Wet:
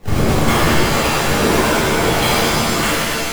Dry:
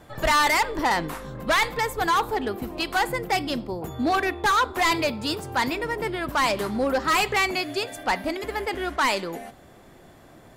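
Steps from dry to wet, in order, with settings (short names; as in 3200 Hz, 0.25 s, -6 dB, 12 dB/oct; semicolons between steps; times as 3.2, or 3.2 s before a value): low shelf 86 Hz +11.5 dB; wide varispeed 3.18×; Butterworth band-stop 1700 Hz, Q 1.3; decimation with a swept rate 27×, swing 160% 1.7 Hz; shimmer reverb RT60 1.9 s, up +7 st, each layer -2 dB, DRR -10 dB; gain -3 dB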